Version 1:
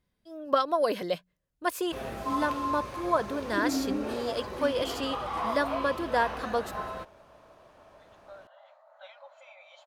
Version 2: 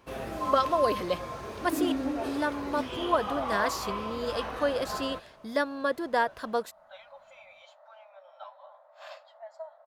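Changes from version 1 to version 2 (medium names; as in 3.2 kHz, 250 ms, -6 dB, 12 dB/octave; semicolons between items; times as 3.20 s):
first sound: entry -1.85 s; second sound: entry -2.10 s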